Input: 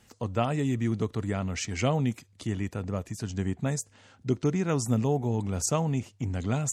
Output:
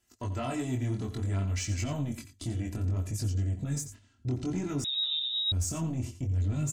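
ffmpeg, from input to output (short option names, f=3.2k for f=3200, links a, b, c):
-filter_complex "[0:a]agate=range=-14dB:threshold=-49dB:ratio=16:detection=peak,aemphasis=mode=production:type=cd,aecho=1:1:3:0.73,asubboost=boost=7.5:cutoff=230,alimiter=limit=-20dB:level=0:latency=1:release=44,asoftclip=type=tanh:threshold=-23dB,flanger=delay=19.5:depth=4.7:speed=0.59,asplit=2[a][b];[b]aecho=0:1:88:0.266[c];[a][c]amix=inputs=2:normalize=0,asettb=1/sr,asplit=3[d][e][f];[d]atrim=end=4.844[g];[e]atrim=start=4.84:end=5.52,asetpts=PTS-STARTPTS,afade=t=in:d=0.004:c=qsin,afade=t=out:st=0.676:d=0.004:c=qsin,lowpass=f=3.3k:t=q:w=0.5098,lowpass=f=3.3k:t=q:w=0.6013,lowpass=f=3.3k:t=q:w=0.9,lowpass=f=3.3k:t=q:w=2.563,afreqshift=-3900[h];[f]atrim=start=5.516[i];[g][h]acrossfade=d=0.004:c1=hsin:c2=qsin[j];[j][i]acrossfade=d=0.004:c1=qsin:c2=hsin"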